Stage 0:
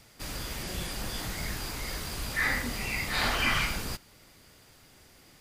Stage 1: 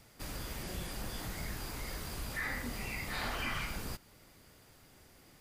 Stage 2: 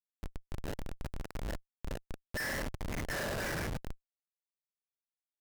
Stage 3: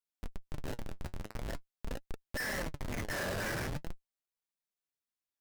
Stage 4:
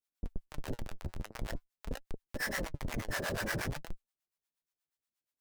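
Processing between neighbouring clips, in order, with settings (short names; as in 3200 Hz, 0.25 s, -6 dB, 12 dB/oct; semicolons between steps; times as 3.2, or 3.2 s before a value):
high shelf 6900 Hz +10.5 dB; compressor 2:1, threshold -33 dBFS, peak gain reduction 6.5 dB; high shelf 2800 Hz -10 dB; gain -2 dB
double band-pass 1000 Hz, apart 1.5 oct; Schmitt trigger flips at -47 dBFS; vibrato 0.81 Hz 43 cents; gain +16.5 dB
flange 0.46 Hz, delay 2 ms, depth 9.1 ms, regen +56%; gain +4 dB
harmonic tremolo 8.4 Hz, depth 100%, crossover 590 Hz; gain +5 dB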